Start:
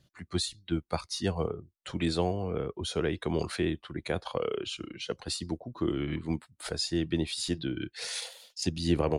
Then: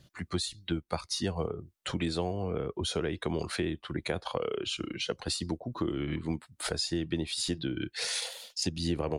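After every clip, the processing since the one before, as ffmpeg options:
-af "acompressor=threshold=0.0141:ratio=3,volume=2.11"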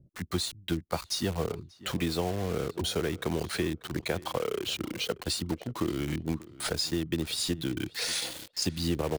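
-filter_complex "[0:a]acrossover=split=510[s0][s1];[s1]acrusher=bits=6:mix=0:aa=0.000001[s2];[s0][s2]amix=inputs=2:normalize=0,asplit=2[s3][s4];[s4]adelay=588,lowpass=f=2400:p=1,volume=0.112,asplit=2[s5][s6];[s6]adelay=588,lowpass=f=2400:p=1,volume=0.2[s7];[s3][s5][s7]amix=inputs=3:normalize=0,volume=1.19"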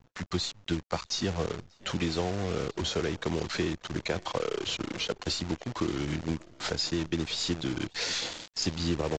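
-af "acrusher=bits=7:dc=4:mix=0:aa=0.000001,aresample=16000,aresample=44100" -ar 22050 -c:a aac -b:a 48k

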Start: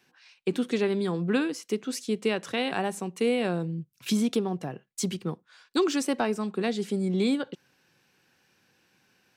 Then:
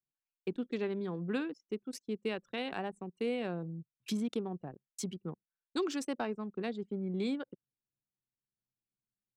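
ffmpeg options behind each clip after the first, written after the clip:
-af "anlmdn=10,volume=0.355"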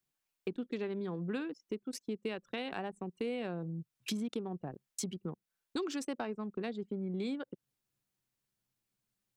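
-af "acompressor=threshold=0.00398:ratio=2.5,volume=2.66"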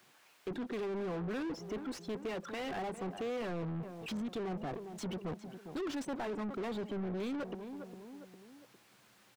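-filter_complex "[0:a]asoftclip=type=tanh:threshold=0.0106,asplit=2[s0][s1];[s1]adelay=405,lowpass=f=860:p=1,volume=0.0668,asplit=2[s2][s3];[s3]adelay=405,lowpass=f=860:p=1,volume=0.47,asplit=2[s4][s5];[s5]adelay=405,lowpass=f=860:p=1,volume=0.47[s6];[s0][s2][s4][s6]amix=inputs=4:normalize=0,asplit=2[s7][s8];[s8]highpass=f=720:p=1,volume=44.7,asoftclip=type=tanh:threshold=0.0119[s9];[s7][s9]amix=inputs=2:normalize=0,lowpass=f=1600:p=1,volume=0.501,volume=1.88"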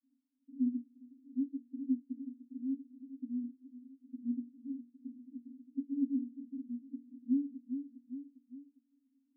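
-af "asuperpass=centerf=260:order=12:qfactor=5.6,volume=3.16"

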